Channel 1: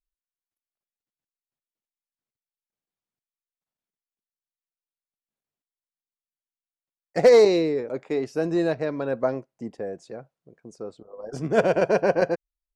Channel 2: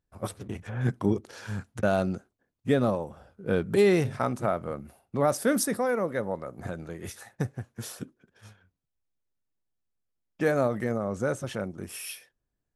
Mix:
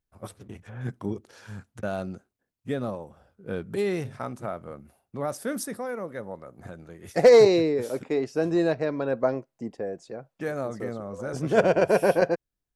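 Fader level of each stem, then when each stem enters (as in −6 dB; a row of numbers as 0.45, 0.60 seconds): 0.0, −6.0 decibels; 0.00, 0.00 seconds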